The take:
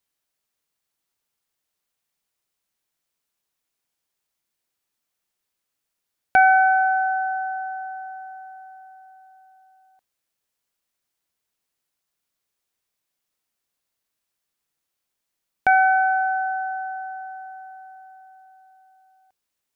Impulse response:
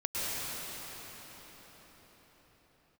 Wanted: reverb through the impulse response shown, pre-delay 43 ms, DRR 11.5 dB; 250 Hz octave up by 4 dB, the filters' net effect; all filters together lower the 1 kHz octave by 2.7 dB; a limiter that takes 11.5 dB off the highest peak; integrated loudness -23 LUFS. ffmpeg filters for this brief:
-filter_complex "[0:a]equalizer=f=250:t=o:g=5.5,equalizer=f=1000:t=o:g=-5,alimiter=limit=0.106:level=0:latency=1,asplit=2[s0][s1];[1:a]atrim=start_sample=2205,adelay=43[s2];[s1][s2]afir=irnorm=-1:irlink=0,volume=0.1[s3];[s0][s3]amix=inputs=2:normalize=0,volume=2"

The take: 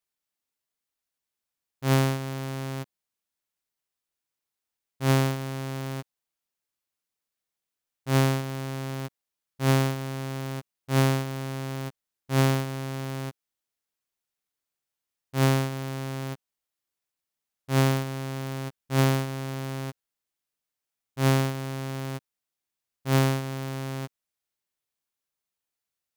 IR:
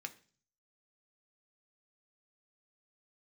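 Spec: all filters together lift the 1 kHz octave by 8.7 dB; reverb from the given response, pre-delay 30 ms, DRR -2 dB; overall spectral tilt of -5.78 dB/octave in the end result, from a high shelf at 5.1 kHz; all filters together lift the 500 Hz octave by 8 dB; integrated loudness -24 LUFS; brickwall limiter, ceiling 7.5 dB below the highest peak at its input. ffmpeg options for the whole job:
-filter_complex "[0:a]equalizer=f=500:t=o:g=8,equalizer=f=1000:t=o:g=8,highshelf=f=5100:g=8,alimiter=limit=0.266:level=0:latency=1,asplit=2[s0][s1];[1:a]atrim=start_sample=2205,adelay=30[s2];[s1][s2]afir=irnorm=-1:irlink=0,volume=1.58[s3];[s0][s3]amix=inputs=2:normalize=0,volume=0.794"

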